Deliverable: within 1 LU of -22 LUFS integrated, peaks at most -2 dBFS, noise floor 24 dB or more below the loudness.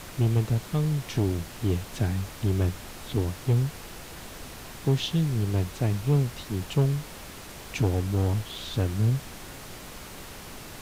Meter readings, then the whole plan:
clipped 0.5%; flat tops at -16.0 dBFS; noise floor -43 dBFS; noise floor target -52 dBFS; loudness -27.5 LUFS; peak -16.0 dBFS; loudness target -22.0 LUFS
-> clip repair -16 dBFS; noise print and reduce 9 dB; gain +5.5 dB

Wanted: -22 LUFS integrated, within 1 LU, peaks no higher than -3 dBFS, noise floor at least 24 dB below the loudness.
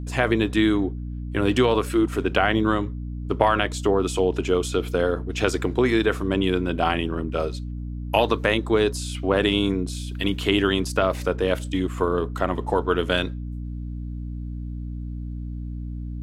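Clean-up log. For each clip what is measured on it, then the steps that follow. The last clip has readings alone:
hum 60 Hz; harmonics up to 300 Hz; hum level -29 dBFS; loudness -24.0 LUFS; peak -3.5 dBFS; loudness target -22.0 LUFS
-> de-hum 60 Hz, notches 5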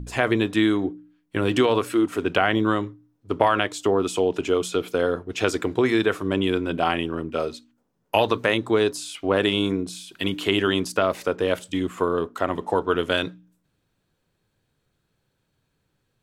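hum none; loudness -23.5 LUFS; peak -3.5 dBFS; loudness target -22.0 LUFS
-> gain +1.5 dB; limiter -3 dBFS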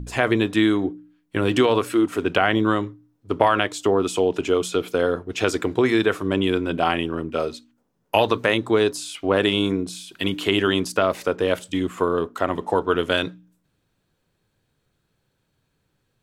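loudness -22.0 LUFS; peak -3.0 dBFS; noise floor -72 dBFS

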